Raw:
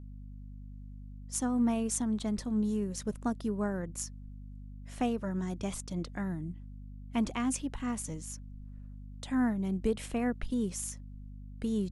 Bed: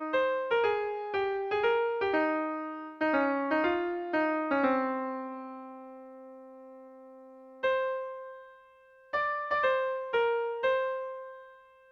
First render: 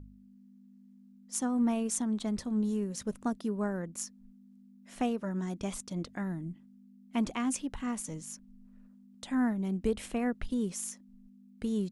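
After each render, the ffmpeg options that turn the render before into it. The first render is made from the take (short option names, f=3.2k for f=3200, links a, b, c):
-af "bandreject=f=50:t=h:w=4,bandreject=f=100:t=h:w=4,bandreject=f=150:t=h:w=4"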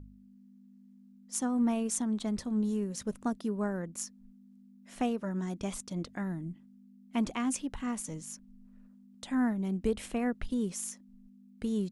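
-af anull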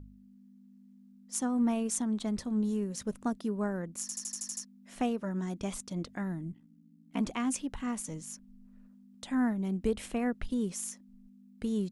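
-filter_complex "[0:a]asettb=1/sr,asplit=3[a][b][c];[a]atrim=end=6.514[d];[b]atrim=start=6.51:end=7.21,asetpts=PTS-STARTPTS,afade=t=in:d=0.004:c=qsin,afade=t=out:st=0.696:d=0.004:c=qsin,aeval=exprs='val(0)*sin(2*PI*32*n/s)':c=same[e];[c]atrim=start=7.206[f];[d][e]acrossfade=d=0.004:c1=hsin:c2=qsin[g];[g][f]acrossfade=d=0.004:c1=qsin:c2=hsin,asplit=9[h][i][j][k][l][m][n][o][p];[h]atrim=end=4.092[q];[i]atrim=start=4.008:end=4.092[r];[j]atrim=start=4.008:end=4.092[s];[k]atrim=start=4.008:end=4.092[t];[l]atrim=start=4.008:end=4.092[u];[m]atrim=start=4.008:end=4.092[v];[n]atrim=start=4.008:end=4.092[w];[o]atrim=start=4.008:end=4.092[x];[p]atrim=start=4.648[y];[q][r]acrossfade=d=0.004:c1=hsin:c2=hsin[z];[z][s]acrossfade=d=0.004:c1=hsin:c2=hsin[aa];[aa][t]acrossfade=d=0.004:c1=hsin:c2=hsin[ab];[ab][u]acrossfade=d=0.004:c1=hsin:c2=hsin[ac];[ac][v]acrossfade=d=0.004:c1=hsin:c2=hsin[ad];[ad][w]acrossfade=d=0.004:c1=hsin:c2=hsin[ae];[ae][x]acrossfade=d=0.004:c1=hsin:c2=hsin[af];[af][y]acrossfade=d=0.004:c1=hsin:c2=hsin"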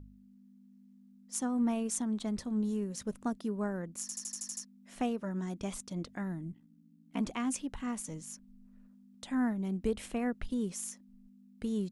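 -af "volume=-2dB"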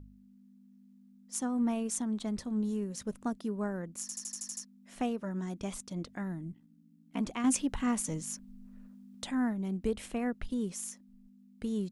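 -filter_complex "[0:a]asettb=1/sr,asplit=3[a][b][c];[a]atrim=end=7.444[d];[b]atrim=start=7.44:end=9.31,asetpts=PTS-STARTPTS,afade=t=in:d=0.004:c=qsin,afade=t=out:st=1.866:d=0.004:c=qsin,acontrast=62[e];[c]atrim=start=9.306[f];[d][e]acrossfade=d=0.004:c1=hsin:c2=qsin[g];[g][f]acrossfade=d=0.004:c1=qsin:c2=hsin"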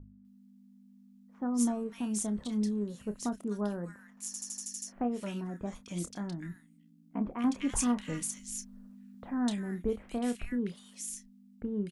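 -filter_complex "[0:a]asplit=2[a][b];[b]adelay=29,volume=-10.5dB[c];[a][c]amix=inputs=2:normalize=0,acrossover=split=1700[d][e];[e]adelay=250[f];[d][f]amix=inputs=2:normalize=0"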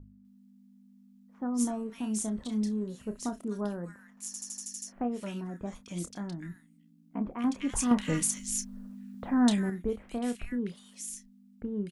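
-filter_complex "[0:a]asettb=1/sr,asplit=3[a][b][c];[a]atrim=end=1.614[d];[b]atrim=start=1.61:end=3.65,asetpts=PTS-STARTPTS,afade=t=in:d=0.004:c=qsin,afade=t=out:st=2.036:d=0.004:c=qsin,asplit=2[e][f];[f]adelay=32,volume=-10.5dB[g];[e][g]amix=inputs=2:normalize=0,atrim=end_sample=89964[h];[c]atrim=start=3.646[i];[d][h]acrossfade=d=0.004:c1=hsin:c2=qsin[j];[j][i]acrossfade=d=0.004:c1=qsin:c2=hsin,asettb=1/sr,asplit=3[k][l][m];[k]atrim=end=7.914[n];[l]atrim=start=7.91:end=9.7,asetpts=PTS-STARTPTS,afade=t=in:d=0.004:c=qsin,afade=t=out:st=1.786:d=0.004:c=qsin,acontrast=84[o];[m]atrim=start=9.696[p];[n][o]acrossfade=d=0.004:c1=hsin:c2=qsin[q];[q][p]acrossfade=d=0.004:c1=qsin:c2=hsin"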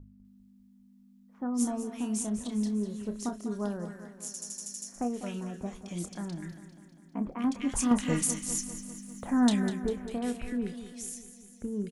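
-af "aecho=1:1:199|398|597|796|995|1194|1393:0.251|0.151|0.0904|0.0543|0.0326|0.0195|0.0117"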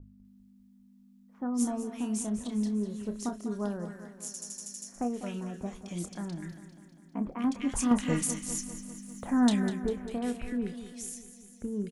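-af "adynamicequalizer=threshold=0.00282:dfrequency=3300:dqfactor=0.7:tfrequency=3300:tqfactor=0.7:attack=5:release=100:ratio=0.375:range=1.5:mode=cutabove:tftype=highshelf"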